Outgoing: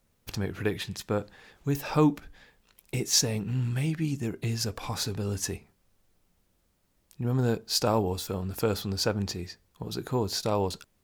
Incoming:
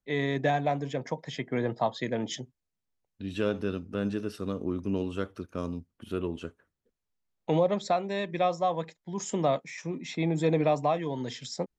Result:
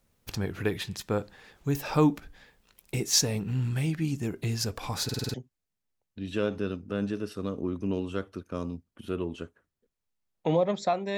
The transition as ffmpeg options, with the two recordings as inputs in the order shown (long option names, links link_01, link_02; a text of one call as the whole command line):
ffmpeg -i cue0.wav -i cue1.wav -filter_complex "[0:a]apad=whole_dur=11.17,atrim=end=11.17,asplit=6[link_01][link_02][link_03][link_04][link_05][link_06];[link_01]atrim=end=5.092[link_07];[link_02]atrim=start=5.038:end=5.092[link_08];[link_03]atrim=start=5.038:end=5.092[link_09];[link_04]atrim=start=5.038:end=5.092[link_10];[link_05]atrim=start=5.038:end=5.092[link_11];[link_06]atrim=start=5.038:end=5.092[link_12];[1:a]atrim=start=2.368:end=8.2[link_13];[link_07][link_08]acrossfade=duration=0.004:curve1=hsin:curve2=hsin[link_14];[link_14][link_09]acrossfade=duration=0.004:curve1=hsin:curve2=hsin[link_15];[link_15][link_10]acrossfade=duration=0.004:curve1=hsin:curve2=hsin[link_16];[link_16][link_11]acrossfade=duration=0.004:curve1=hsin:curve2=hsin[link_17];[link_17][link_12]acrossfade=duration=0.004:curve1=hsin:curve2=hsin[link_18];[link_18][link_13]acrossfade=duration=0.004:curve1=hsin:curve2=hsin" out.wav